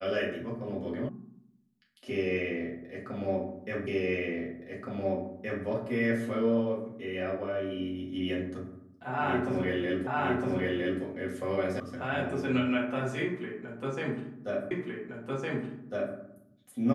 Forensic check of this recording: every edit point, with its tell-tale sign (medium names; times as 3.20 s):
1.09 s: sound stops dead
3.87 s: repeat of the last 1.77 s
10.07 s: repeat of the last 0.96 s
11.80 s: sound stops dead
14.71 s: repeat of the last 1.46 s